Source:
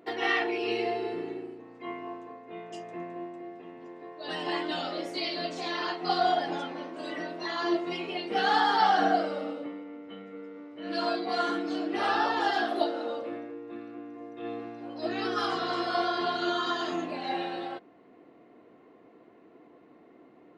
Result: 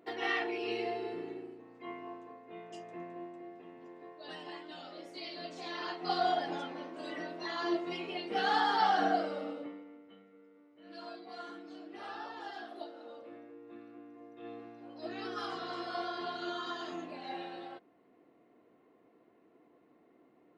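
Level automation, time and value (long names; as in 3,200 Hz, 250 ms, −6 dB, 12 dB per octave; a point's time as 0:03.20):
0:04.09 −6 dB
0:04.61 −16 dB
0:06.16 −5 dB
0:09.62 −5 dB
0:10.35 −17 dB
0:12.94 −17 dB
0:13.69 −9.5 dB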